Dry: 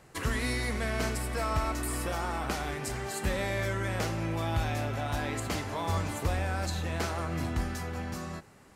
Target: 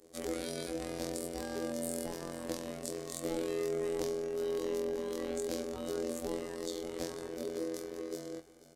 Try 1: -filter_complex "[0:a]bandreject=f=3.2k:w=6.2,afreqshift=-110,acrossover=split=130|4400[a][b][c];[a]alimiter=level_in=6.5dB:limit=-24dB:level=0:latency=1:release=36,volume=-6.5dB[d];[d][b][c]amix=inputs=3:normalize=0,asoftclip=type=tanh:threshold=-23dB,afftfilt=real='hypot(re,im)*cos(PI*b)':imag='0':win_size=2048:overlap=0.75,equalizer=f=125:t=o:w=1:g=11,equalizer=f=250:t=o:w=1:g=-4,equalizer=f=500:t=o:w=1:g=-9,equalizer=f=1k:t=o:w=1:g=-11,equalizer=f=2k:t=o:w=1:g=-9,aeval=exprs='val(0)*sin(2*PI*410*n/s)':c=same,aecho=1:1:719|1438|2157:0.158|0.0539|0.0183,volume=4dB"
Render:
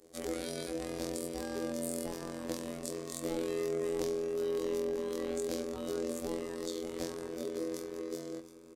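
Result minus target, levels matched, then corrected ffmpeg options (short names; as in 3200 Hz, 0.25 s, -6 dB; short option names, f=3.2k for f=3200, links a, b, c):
echo 0.23 s late
-filter_complex "[0:a]bandreject=f=3.2k:w=6.2,afreqshift=-110,acrossover=split=130|4400[a][b][c];[a]alimiter=level_in=6.5dB:limit=-24dB:level=0:latency=1:release=36,volume=-6.5dB[d];[d][b][c]amix=inputs=3:normalize=0,asoftclip=type=tanh:threshold=-23dB,afftfilt=real='hypot(re,im)*cos(PI*b)':imag='0':win_size=2048:overlap=0.75,equalizer=f=125:t=o:w=1:g=11,equalizer=f=250:t=o:w=1:g=-4,equalizer=f=500:t=o:w=1:g=-9,equalizer=f=1k:t=o:w=1:g=-11,equalizer=f=2k:t=o:w=1:g=-9,aeval=exprs='val(0)*sin(2*PI*410*n/s)':c=same,aecho=1:1:489|978|1467:0.158|0.0539|0.0183,volume=4dB"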